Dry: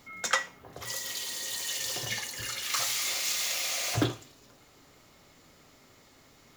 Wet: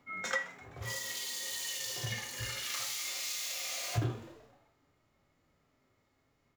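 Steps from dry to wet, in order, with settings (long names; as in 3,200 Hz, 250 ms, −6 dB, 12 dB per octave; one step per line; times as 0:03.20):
echo with shifted repeats 127 ms, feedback 63%, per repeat +110 Hz, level −20 dB
harmonic and percussive parts rebalanced percussive −15 dB
downward compressor 10 to 1, threshold −39 dBFS, peak gain reduction 13 dB
multiband upward and downward expander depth 100%
level +4.5 dB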